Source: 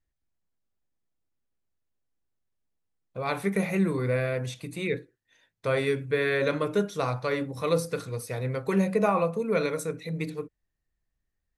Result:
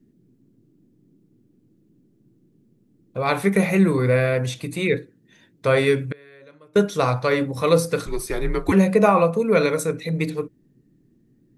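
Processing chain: band noise 110–340 Hz -67 dBFS; 5.98–6.76 flipped gate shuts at -25 dBFS, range -30 dB; 8.06–8.72 frequency shift -100 Hz; gain +8 dB

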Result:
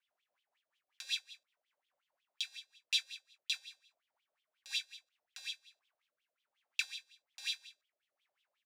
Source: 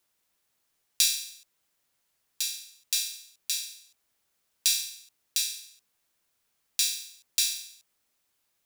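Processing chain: wah 5.5 Hz 560–3400 Hz, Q 8.3; doubler 21 ms -12 dB; rotary speaker horn 5 Hz, later 1.2 Hz, at 4.95; gain +10.5 dB

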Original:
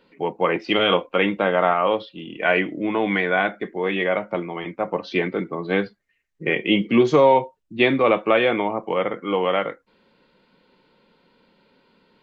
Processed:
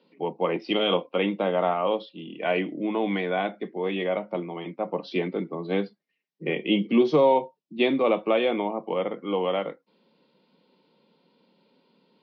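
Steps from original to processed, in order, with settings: Chebyshev band-pass 150–5500 Hz, order 5; bell 1600 Hz -10.5 dB 1 oct; gain -2.5 dB

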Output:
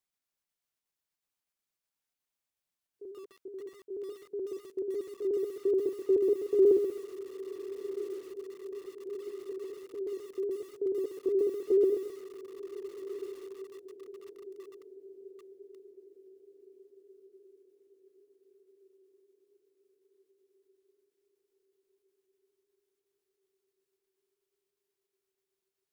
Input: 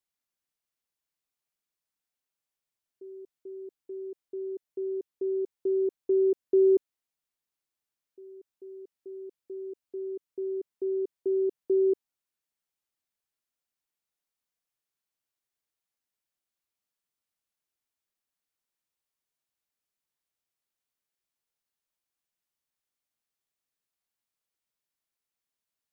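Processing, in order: trilling pitch shifter +1 st, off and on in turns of 61 ms; diffused feedback echo 1.36 s, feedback 50%, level -13 dB; lo-fi delay 0.132 s, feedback 35%, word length 8-bit, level -8.5 dB

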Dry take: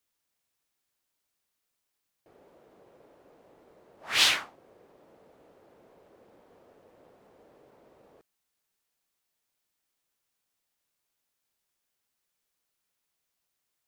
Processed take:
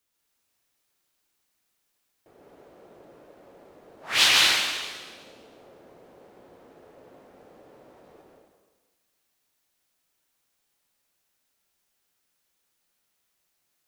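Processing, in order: plate-style reverb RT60 1.4 s, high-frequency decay 1×, pre-delay 0.105 s, DRR -2 dB; gain +2.5 dB

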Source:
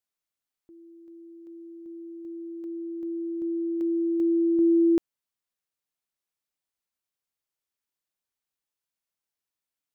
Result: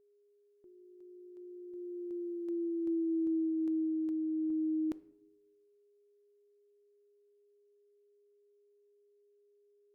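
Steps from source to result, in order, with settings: Doppler pass-by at 2.77, 26 m/s, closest 27 m; limiter -29 dBFS, peak gain reduction 7 dB; on a send at -16.5 dB: reverb RT60 0.70 s, pre-delay 4 ms; on the sum: whine 410 Hz -66 dBFS

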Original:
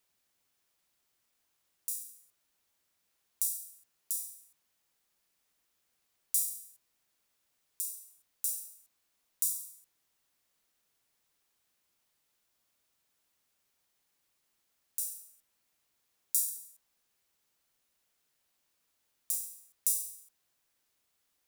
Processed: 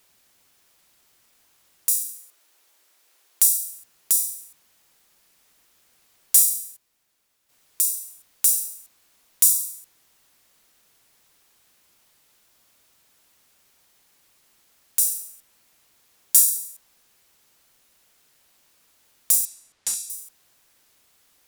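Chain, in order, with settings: 1.92–3.73 HPF 310 Hz 24 dB/oct; sine folder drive 12 dB, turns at -3.5 dBFS; 6.39–7.87 dip -9.5 dB, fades 0.38 s logarithmic; 19.45–20.1 air absorption 74 m

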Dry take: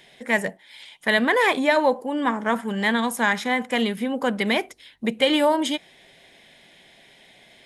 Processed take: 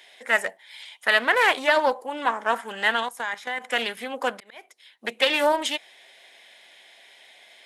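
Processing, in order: HPF 650 Hz 12 dB/oct; 3.03–3.64 level quantiser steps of 15 dB; 4.34–5.05 auto swell 0.68 s; Doppler distortion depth 0.18 ms; gain +1.5 dB

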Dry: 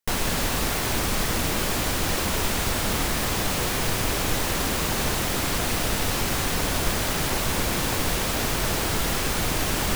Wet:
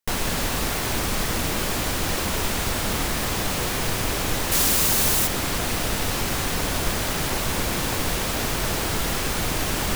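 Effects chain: 4.51–5.26 high shelf 3900 Hz -> 6300 Hz +12 dB

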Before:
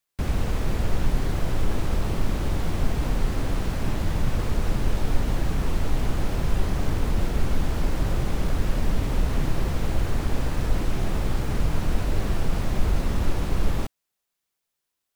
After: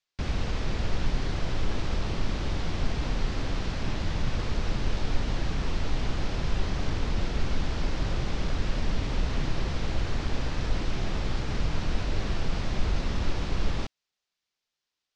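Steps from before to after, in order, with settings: LPF 5600 Hz 24 dB/oct; high shelf 2300 Hz +9 dB; gain -4.5 dB

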